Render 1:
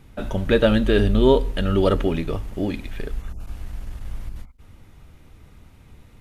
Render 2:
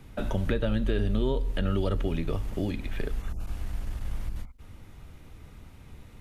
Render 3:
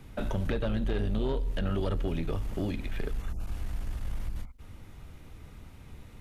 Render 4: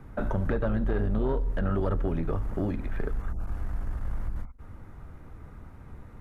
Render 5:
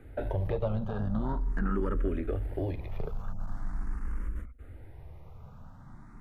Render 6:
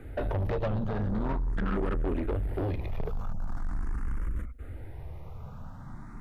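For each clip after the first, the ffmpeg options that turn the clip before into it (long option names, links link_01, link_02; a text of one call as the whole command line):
ffmpeg -i in.wav -filter_complex "[0:a]acrossover=split=140|2900[link_01][link_02][link_03];[link_01]acompressor=threshold=-25dB:ratio=4[link_04];[link_02]acompressor=threshold=-30dB:ratio=4[link_05];[link_03]acompressor=threshold=-50dB:ratio=4[link_06];[link_04][link_05][link_06]amix=inputs=3:normalize=0" out.wav
ffmpeg -i in.wav -af "asoftclip=type=tanh:threshold=-23dB" out.wav
ffmpeg -i in.wav -af "highshelf=frequency=2100:width_type=q:width=1.5:gain=-11.5,volume=2.5dB" out.wav
ffmpeg -i in.wav -filter_complex "[0:a]asplit=2[link_01][link_02];[link_02]afreqshift=0.43[link_03];[link_01][link_03]amix=inputs=2:normalize=1" out.wav
ffmpeg -i in.wav -af "asoftclip=type=tanh:threshold=-32dB,volume=6.5dB" out.wav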